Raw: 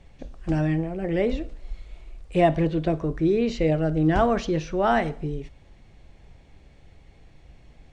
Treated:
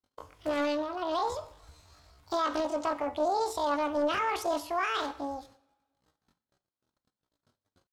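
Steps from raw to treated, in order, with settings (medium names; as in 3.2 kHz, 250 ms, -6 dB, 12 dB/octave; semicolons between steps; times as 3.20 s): gate -44 dBFS, range -38 dB; high-pass 320 Hz 6 dB/octave; peak limiter -19.5 dBFS, peak gain reduction 10 dB; pitch shift +11 st; two-slope reverb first 0.54 s, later 1.6 s, from -18 dB, DRR 13 dB; loudspeaker Doppler distortion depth 0.25 ms; trim -2 dB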